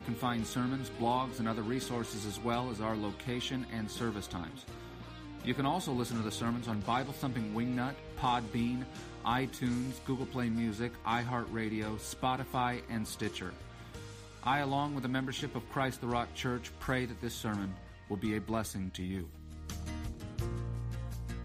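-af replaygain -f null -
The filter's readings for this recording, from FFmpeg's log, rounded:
track_gain = +16.4 dB
track_peak = 0.081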